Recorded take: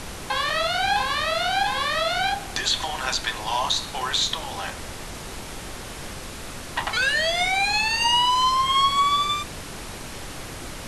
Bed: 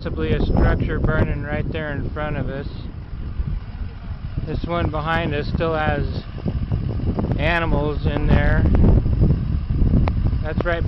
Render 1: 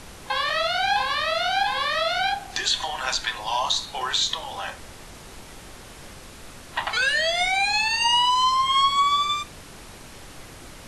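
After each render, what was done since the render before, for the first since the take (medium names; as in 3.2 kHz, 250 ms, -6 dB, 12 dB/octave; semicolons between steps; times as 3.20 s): noise print and reduce 7 dB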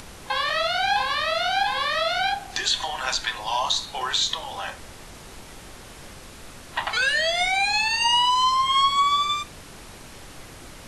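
upward compressor, threshold -41 dBFS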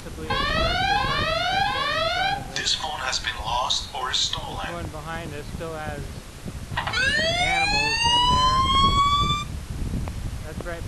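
add bed -11.5 dB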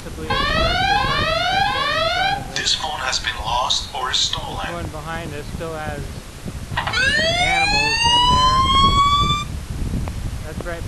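trim +4.5 dB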